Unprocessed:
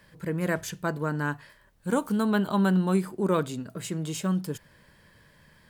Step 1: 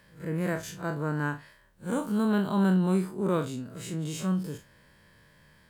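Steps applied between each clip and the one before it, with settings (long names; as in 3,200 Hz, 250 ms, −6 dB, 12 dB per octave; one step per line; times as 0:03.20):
spectrum smeared in time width 81 ms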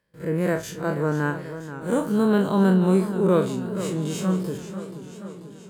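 noise gate with hold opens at −46 dBFS
parametric band 450 Hz +6 dB 0.92 octaves
feedback echo with a swinging delay time 484 ms, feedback 65%, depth 126 cents, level −12 dB
level +4 dB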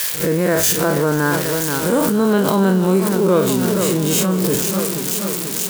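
spike at every zero crossing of −24 dBFS
in parallel at +2 dB: compressor whose output falls as the input rises −29 dBFS, ratio −1
on the sum: parametric band 140 Hz −4 dB 1.4 octaves
level +4 dB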